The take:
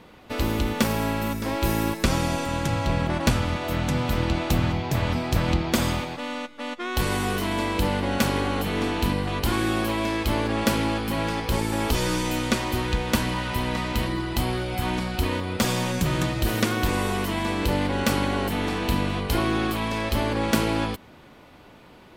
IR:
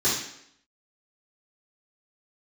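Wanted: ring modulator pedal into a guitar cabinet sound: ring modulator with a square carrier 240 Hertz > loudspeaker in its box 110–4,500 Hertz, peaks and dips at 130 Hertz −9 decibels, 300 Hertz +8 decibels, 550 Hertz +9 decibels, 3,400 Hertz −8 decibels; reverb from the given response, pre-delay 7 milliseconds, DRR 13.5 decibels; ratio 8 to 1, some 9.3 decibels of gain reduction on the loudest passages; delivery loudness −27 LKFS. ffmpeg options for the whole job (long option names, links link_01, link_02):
-filter_complex "[0:a]acompressor=threshold=-27dB:ratio=8,asplit=2[link_01][link_02];[1:a]atrim=start_sample=2205,adelay=7[link_03];[link_02][link_03]afir=irnorm=-1:irlink=0,volume=-27dB[link_04];[link_01][link_04]amix=inputs=2:normalize=0,aeval=exprs='val(0)*sgn(sin(2*PI*240*n/s))':channel_layout=same,highpass=110,equalizer=frequency=130:width_type=q:width=4:gain=-9,equalizer=frequency=300:width_type=q:width=4:gain=8,equalizer=frequency=550:width_type=q:width=4:gain=9,equalizer=frequency=3400:width_type=q:width=4:gain=-8,lowpass=frequency=4500:width=0.5412,lowpass=frequency=4500:width=1.3066,volume=1.5dB"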